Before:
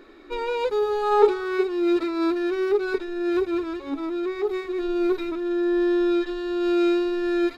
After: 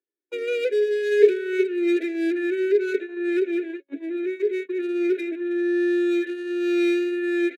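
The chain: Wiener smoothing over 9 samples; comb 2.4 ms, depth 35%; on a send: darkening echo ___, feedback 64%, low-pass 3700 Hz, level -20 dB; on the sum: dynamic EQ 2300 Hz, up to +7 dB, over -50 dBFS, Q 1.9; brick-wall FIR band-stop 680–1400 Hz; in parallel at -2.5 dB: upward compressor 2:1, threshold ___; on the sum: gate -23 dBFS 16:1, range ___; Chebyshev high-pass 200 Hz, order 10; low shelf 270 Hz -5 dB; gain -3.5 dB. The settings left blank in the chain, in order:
73 ms, -24 dBFS, -52 dB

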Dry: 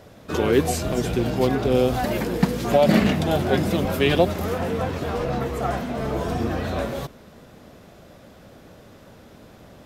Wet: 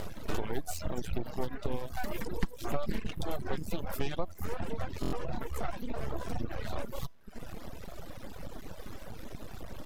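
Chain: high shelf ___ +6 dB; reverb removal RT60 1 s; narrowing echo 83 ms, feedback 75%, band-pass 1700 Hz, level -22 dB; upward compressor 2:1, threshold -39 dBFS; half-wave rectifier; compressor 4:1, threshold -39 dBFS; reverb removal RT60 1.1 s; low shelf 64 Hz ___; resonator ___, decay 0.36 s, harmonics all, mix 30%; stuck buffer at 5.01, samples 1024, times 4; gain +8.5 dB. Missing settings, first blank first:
11000 Hz, +11 dB, 330 Hz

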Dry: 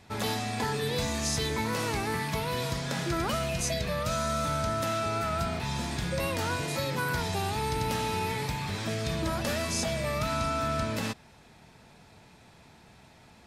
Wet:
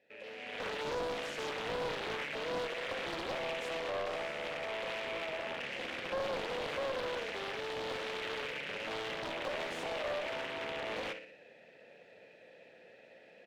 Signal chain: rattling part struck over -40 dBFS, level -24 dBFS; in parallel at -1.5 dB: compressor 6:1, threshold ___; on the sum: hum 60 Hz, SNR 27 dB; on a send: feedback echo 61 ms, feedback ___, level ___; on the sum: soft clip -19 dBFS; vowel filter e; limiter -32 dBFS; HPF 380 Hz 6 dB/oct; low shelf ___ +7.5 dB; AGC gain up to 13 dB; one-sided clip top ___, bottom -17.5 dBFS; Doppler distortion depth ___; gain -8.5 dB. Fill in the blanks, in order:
-45 dBFS, 55%, -9 dB, 480 Hz, -27.5 dBFS, 0.97 ms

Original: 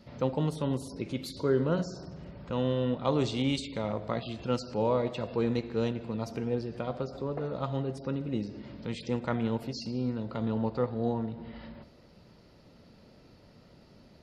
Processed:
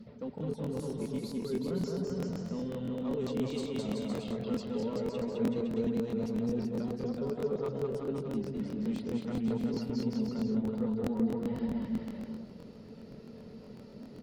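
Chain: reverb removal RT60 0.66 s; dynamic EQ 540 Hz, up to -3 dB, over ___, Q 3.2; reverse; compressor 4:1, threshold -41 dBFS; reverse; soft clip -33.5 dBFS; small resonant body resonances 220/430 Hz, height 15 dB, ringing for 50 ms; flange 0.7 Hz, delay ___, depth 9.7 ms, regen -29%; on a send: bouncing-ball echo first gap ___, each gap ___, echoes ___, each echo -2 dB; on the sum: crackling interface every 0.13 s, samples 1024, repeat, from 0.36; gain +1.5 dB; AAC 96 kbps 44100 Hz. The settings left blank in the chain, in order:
-43 dBFS, 0.5 ms, 0.21 s, 0.8×, 5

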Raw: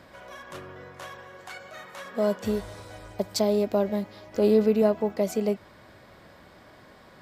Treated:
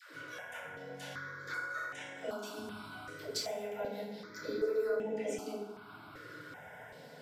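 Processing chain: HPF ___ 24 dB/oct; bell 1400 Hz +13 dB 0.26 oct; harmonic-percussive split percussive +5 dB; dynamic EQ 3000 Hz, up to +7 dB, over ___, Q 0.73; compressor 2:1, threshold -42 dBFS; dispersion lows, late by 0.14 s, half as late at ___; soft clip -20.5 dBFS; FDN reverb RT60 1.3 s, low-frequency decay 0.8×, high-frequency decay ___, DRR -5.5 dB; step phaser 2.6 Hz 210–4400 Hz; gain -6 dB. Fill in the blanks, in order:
110 Hz, -45 dBFS, 490 Hz, 0.55×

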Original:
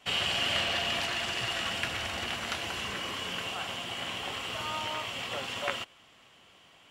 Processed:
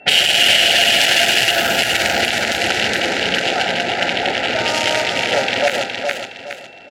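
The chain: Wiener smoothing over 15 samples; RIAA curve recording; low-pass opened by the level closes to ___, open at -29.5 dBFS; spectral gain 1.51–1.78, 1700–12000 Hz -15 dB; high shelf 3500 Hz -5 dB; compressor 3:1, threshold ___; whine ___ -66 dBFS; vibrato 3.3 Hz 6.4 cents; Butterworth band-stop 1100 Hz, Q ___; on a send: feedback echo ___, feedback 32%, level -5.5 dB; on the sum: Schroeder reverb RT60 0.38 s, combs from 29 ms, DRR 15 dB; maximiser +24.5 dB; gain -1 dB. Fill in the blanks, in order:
1300 Hz, -33 dBFS, 2700 Hz, 1.8, 0.415 s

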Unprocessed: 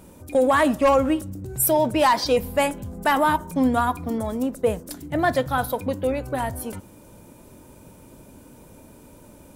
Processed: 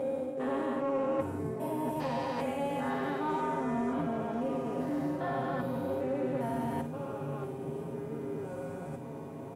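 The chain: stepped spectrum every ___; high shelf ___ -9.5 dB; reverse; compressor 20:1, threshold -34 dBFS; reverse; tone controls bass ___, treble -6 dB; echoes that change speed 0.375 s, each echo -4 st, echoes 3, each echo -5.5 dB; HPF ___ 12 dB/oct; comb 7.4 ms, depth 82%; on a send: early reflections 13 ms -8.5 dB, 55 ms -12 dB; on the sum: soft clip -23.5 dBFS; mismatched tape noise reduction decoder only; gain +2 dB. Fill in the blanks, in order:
0.4 s, 3300 Hz, -1 dB, 130 Hz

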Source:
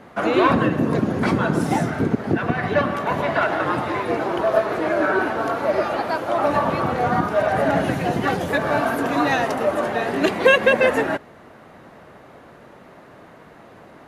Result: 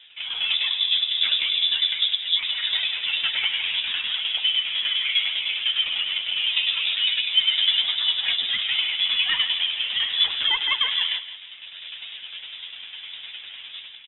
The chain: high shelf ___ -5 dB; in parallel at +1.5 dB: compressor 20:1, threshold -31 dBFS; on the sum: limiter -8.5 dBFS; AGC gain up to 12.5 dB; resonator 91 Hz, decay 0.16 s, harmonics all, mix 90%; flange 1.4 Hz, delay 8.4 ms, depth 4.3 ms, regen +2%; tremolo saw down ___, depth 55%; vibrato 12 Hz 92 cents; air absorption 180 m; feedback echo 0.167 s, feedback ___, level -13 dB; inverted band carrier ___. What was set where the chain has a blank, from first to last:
2500 Hz, 9.9 Hz, 33%, 3700 Hz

